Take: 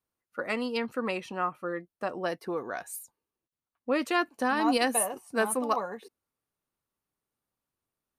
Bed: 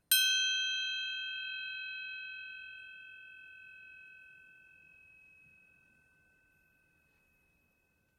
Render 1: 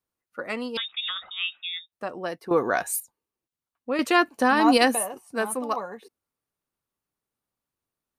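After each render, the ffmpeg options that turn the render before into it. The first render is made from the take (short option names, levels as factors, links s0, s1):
-filter_complex "[0:a]asettb=1/sr,asplit=3[s0][s1][s2];[s0]atrim=end=0.774[s3];[s1]atrim=start=0.77:end=1.92,asetpts=PTS-STARTPTS,afade=t=in:d=0.004:c=qsin,afade=t=out:st=1.146:d=0.004:c=qsin,lowpass=f=3300:t=q:w=0.5098,lowpass=f=3300:t=q:w=0.6013,lowpass=f=3300:t=q:w=0.9,lowpass=f=3300:t=q:w=2.563,afreqshift=-3900[s4];[s2]atrim=start=1.916[s5];[s3][s4]acrossfade=d=0.004:c1=hsin:c2=qsin[s6];[s6][s5]acrossfade=d=0.004:c1=qsin:c2=hsin,asplit=5[s7][s8][s9][s10][s11];[s7]atrim=end=2.512[s12];[s8]atrim=start=2.508:end=3.002,asetpts=PTS-STARTPTS,volume=3.76[s13];[s9]atrim=start=2.998:end=3.992[s14];[s10]atrim=start=3.988:end=4.952,asetpts=PTS-STARTPTS,volume=2.24[s15];[s11]atrim=start=4.948[s16];[s12][s13]acrossfade=d=0.004:c1=hsin:c2=hsin[s17];[s17][s14]acrossfade=d=0.004:c1=hsin:c2=hsin[s18];[s18][s15]acrossfade=d=0.004:c1=hsin:c2=hsin[s19];[s19][s16]acrossfade=d=0.004:c1=hsin:c2=hsin"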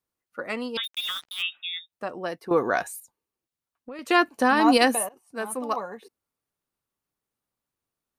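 -filter_complex "[0:a]asplit=3[s0][s1][s2];[s0]afade=t=out:st=0.83:d=0.02[s3];[s1]acrusher=bits=5:mix=0:aa=0.5,afade=t=in:st=0.83:d=0.02,afade=t=out:st=1.41:d=0.02[s4];[s2]afade=t=in:st=1.41:d=0.02[s5];[s3][s4][s5]amix=inputs=3:normalize=0,asettb=1/sr,asplit=3[s6][s7][s8];[s6]atrim=end=2.844[s9];[s7]atrim=start=2.84:end=4.1,asetpts=PTS-STARTPTS,afade=t=in:d=0.004:c=qsin,afade=t=out:st=1.256:d=0.004:c=qsin,acompressor=threshold=0.0158:ratio=5:attack=3.2:release=140:knee=1:detection=peak[s10];[s8]atrim=start=4.096[s11];[s9][s10]acrossfade=d=0.004:c1=hsin:c2=qsin[s12];[s12][s11]acrossfade=d=0.004:c1=qsin:c2=hsin,asplit=2[s13][s14];[s13]atrim=end=5.09,asetpts=PTS-STARTPTS,afade=t=out:st=5.086:d=0.004:c=hsin:silence=0.105925[s15];[s14]atrim=start=5.09,asetpts=PTS-STARTPTS,afade=t=in:d=0.61:silence=0.105925[s16];[s15][s16]concat=n=2:v=0:a=1"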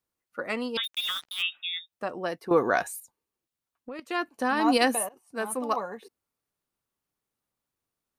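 -filter_complex "[0:a]asplit=2[s0][s1];[s0]atrim=end=4,asetpts=PTS-STARTPTS,afade=t=out:st=3.996:d=0.004:c=hsin:silence=0.223872[s2];[s1]atrim=start=4,asetpts=PTS-STARTPTS,afade=t=in:d=1.39:silence=0.223872[s3];[s2][s3]concat=n=2:v=0:a=1"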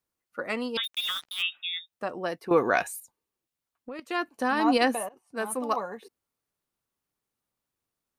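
-filter_complex "[0:a]asettb=1/sr,asplit=3[s0][s1][s2];[s0]atrim=end=2.444[s3];[s1]atrim=start=2.44:end=2.87,asetpts=PTS-STARTPTS,afade=t=in:d=0.004:c=qsin,afade=t=out:st=0.426:d=0.004:c=qsin,equalizer=f=2500:w=3.3:g=9[s4];[s2]atrim=start=2.866[s5];[s3][s4]acrossfade=d=0.004:c1=hsin:c2=qsin[s6];[s6][s5]acrossfade=d=0.004:c1=qsin:c2=hsin,asettb=1/sr,asplit=3[s7][s8][s9];[s7]atrim=end=4.644[s10];[s8]atrim=start=4.64:end=5.37,asetpts=PTS-STARTPTS,afade=t=in:d=0.004:c=qsin,afade=t=out:st=0.726:d=0.004:c=qsin,highshelf=f=6100:g=-10[s11];[s9]atrim=start=5.366[s12];[s10][s11]acrossfade=d=0.004:c1=hsin:c2=qsin[s13];[s13][s12]acrossfade=d=0.004:c1=qsin:c2=hsin"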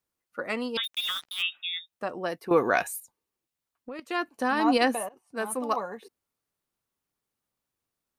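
-filter_complex "[0:a]asettb=1/sr,asplit=3[s0][s1][s2];[s0]atrim=end=2.304[s3];[s1]atrim=start=2.3:end=2.98,asetpts=PTS-STARTPTS,afade=t=in:d=0.004:c=qsin,afade=t=out:st=0.676:d=0.004:c=qsin,equalizer=f=13000:w=1.2:g=5[s4];[s2]atrim=start=2.976[s5];[s3][s4]acrossfade=d=0.004:c1=hsin:c2=qsin[s6];[s6][s5]acrossfade=d=0.004:c1=qsin:c2=hsin"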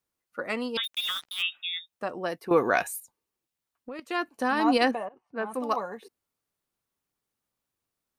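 -filter_complex "[0:a]asettb=1/sr,asplit=3[s0][s1][s2];[s0]atrim=end=4.914[s3];[s1]atrim=start=4.91:end=5.54,asetpts=PTS-STARTPTS,afade=t=in:d=0.004:c=qsin,afade=t=out:st=0.626:d=0.004:c=qsin,lowpass=2300[s4];[s2]atrim=start=5.536[s5];[s3][s4]acrossfade=d=0.004:c1=hsin:c2=qsin[s6];[s6][s5]acrossfade=d=0.004:c1=qsin:c2=hsin"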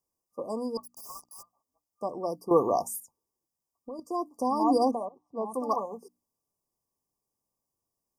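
-af "afftfilt=real='re*(1-between(b*sr/4096,1200,4700))':imag='im*(1-between(b*sr/4096,1200,4700))':win_size=4096:overlap=0.75,bandreject=f=60:t=h:w=6,bandreject=f=120:t=h:w=6,bandreject=f=180:t=h:w=6,bandreject=f=240:t=h:w=6,bandreject=f=300:t=h:w=6"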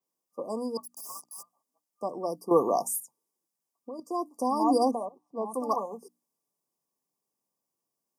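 -af "highpass=f=150:w=0.5412,highpass=f=150:w=1.3066,adynamicequalizer=threshold=0.00158:dfrequency=10000:dqfactor=0.89:tfrequency=10000:tqfactor=0.89:attack=5:release=100:ratio=0.375:range=3:mode=boostabove:tftype=bell"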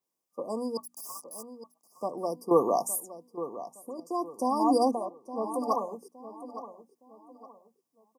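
-filter_complex "[0:a]asplit=2[s0][s1];[s1]adelay=865,lowpass=f=3600:p=1,volume=0.224,asplit=2[s2][s3];[s3]adelay=865,lowpass=f=3600:p=1,volume=0.34,asplit=2[s4][s5];[s5]adelay=865,lowpass=f=3600:p=1,volume=0.34[s6];[s0][s2][s4][s6]amix=inputs=4:normalize=0"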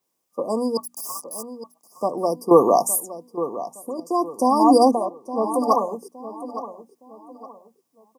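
-af "volume=2.99,alimiter=limit=0.794:level=0:latency=1"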